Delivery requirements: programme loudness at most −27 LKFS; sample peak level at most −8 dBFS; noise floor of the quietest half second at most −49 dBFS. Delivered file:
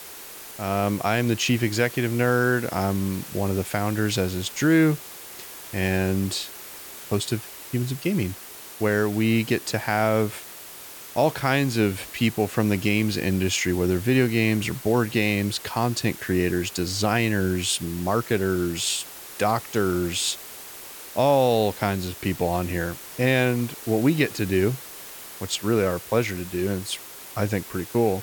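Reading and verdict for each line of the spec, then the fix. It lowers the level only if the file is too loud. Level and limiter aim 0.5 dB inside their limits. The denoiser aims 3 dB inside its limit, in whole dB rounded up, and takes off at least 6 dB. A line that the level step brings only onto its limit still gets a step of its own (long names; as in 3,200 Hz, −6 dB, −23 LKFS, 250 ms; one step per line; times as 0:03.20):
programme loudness −24.0 LKFS: out of spec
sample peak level −8.5 dBFS: in spec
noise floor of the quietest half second −41 dBFS: out of spec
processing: broadband denoise 8 dB, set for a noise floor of −41 dBFS
level −3.5 dB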